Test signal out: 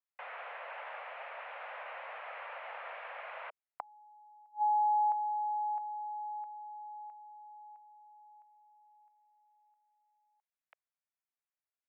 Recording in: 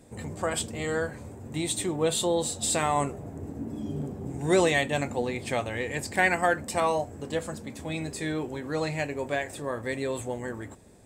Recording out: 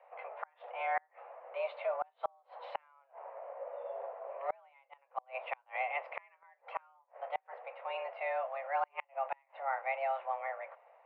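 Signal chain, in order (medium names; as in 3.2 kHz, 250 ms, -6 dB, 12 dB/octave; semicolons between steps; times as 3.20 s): mistuned SSB +270 Hz 300–2300 Hz; inverted gate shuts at -21 dBFS, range -36 dB; trim -2.5 dB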